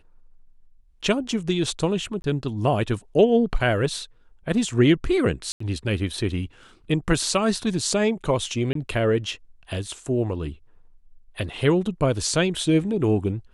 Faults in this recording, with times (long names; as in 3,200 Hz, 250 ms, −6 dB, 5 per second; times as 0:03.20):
0:02.22–0:02.24: drop-out 21 ms
0:05.52–0:05.60: drop-out 84 ms
0:08.73–0:08.75: drop-out 23 ms